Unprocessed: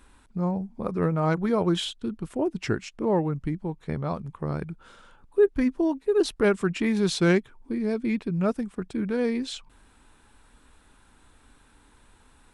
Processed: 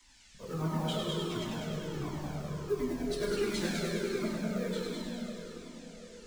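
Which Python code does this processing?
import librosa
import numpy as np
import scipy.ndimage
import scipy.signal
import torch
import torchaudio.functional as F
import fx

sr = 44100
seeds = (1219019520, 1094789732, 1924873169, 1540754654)

p1 = fx.block_float(x, sr, bits=5)
p2 = fx.transient(p1, sr, attack_db=-2, sustain_db=6)
p3 = fx.dispersion(p2, sr, late='lows', ms=41.0, hz=360.0)
p4 = fx.stretch_vocoder_free(p3, sr, factor=0.5)
p5 = fx.step_gate(p4, sr, bpm=87, pattern='x.xxxx.x', floor_db=-60.0, edge_ms=4.5)
p6 = fx.dmg_noise_band(p5, sr, seeds[0], low_hz=1600.0, high_hz=7700.0, level_db=-55.0)
p7 = p6 + fx.echo_heads(p6, sr, ms=101, heads='first and second', feedback_pct=49, wet_db=-6.0, dry=0)
p8 = fx.rev_plate(p7, sr, seeds[1], rt60_s=4.9, hf_ratio=0.6, predelay_ms=0, drr_db=-3.0)
p9 = fx.comb_cascade(p8, sr, direction='falling', hz=1.4)
y = p9 * 10.0 ** (-6.0 / 20.0)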